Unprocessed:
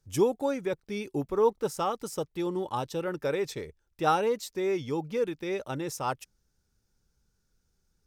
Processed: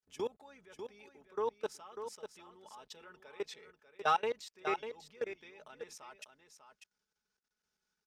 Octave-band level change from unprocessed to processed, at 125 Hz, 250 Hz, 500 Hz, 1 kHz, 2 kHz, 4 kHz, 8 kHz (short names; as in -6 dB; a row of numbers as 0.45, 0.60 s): -23.5, -19.5, -12.0, -7.0, -5.0, -7.0, -12.0 dB